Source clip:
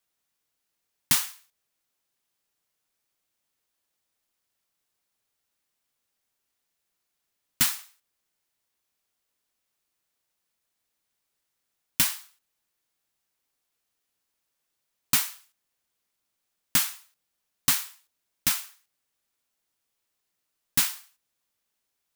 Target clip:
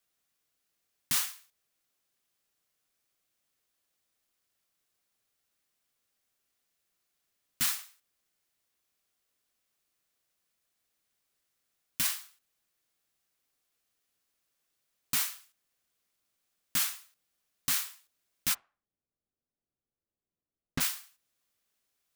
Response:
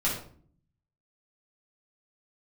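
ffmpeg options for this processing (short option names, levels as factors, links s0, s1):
-filter_complex "[0:a]asplit=3[s0][s1][s2];[s0]afade=t=out:st=18.53:d=0.02[s3];[s1]adynamicsmooth=sensitivity=1.5:basefreq=530,afade=t=in:st=18.53:d=0.02,afade=t=out:st=20.8:d=0.02[s4];[s2]afade=t=in:st=20.8:d=0.02[s5];[s3][s4][s5]amix=inputs=3:normalize=0,alimiter=limit=0.141:level=0:latency=1:release=31,bandreject=f=910:w=9.1"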